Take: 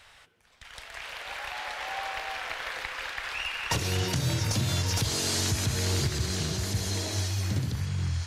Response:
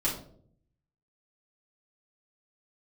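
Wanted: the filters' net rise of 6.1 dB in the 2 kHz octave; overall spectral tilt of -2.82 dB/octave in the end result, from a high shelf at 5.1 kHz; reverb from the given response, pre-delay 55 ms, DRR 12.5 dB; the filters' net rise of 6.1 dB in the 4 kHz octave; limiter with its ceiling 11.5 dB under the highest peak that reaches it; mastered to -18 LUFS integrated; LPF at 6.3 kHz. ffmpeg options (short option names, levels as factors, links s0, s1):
-filter_complex "[0:a]lowpass=6300,equalizer=f=2000:t=o:g=5.5,equalizer=f=4000:t=o:g=4,highshelf=f=5100:g=6.5,alimiter=limit=0.075:level=0:latency=1,asplit=2[s0][s1];[1:a]atrim=start_sample=2205,adelay=55[s2];[s1][s2]afir=irnorm=-1:irlink=0,volume=0.1[s3];[s0][s3]amix=inputs=2:normalize=0,volume=3.98"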